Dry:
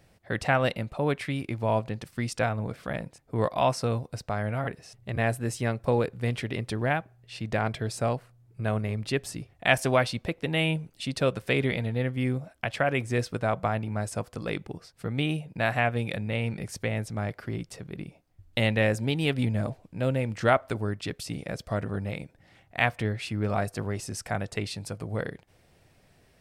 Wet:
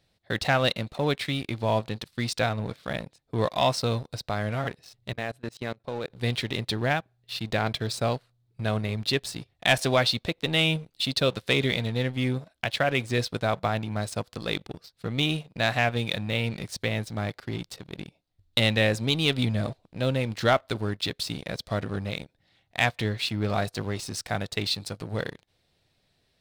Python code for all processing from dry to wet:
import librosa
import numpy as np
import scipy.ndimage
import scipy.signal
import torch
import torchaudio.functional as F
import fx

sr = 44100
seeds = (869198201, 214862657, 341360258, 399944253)

y = fx.chain(x, sr, fx.lowpass(hz=2900.0, slope=6),
    fx.low_shelf(hz=110.0, db=-11.0),
    fx.level_steps(step_db=16), at=(5.13, 6.1))
y = fx.peak_eq(y, sr, hz=3900.0, db=13.5, octaves=0.69)
y = fx.leveller(y, sr, passes=2)
y = y * 10.0 ** (-7.0 / 20.0)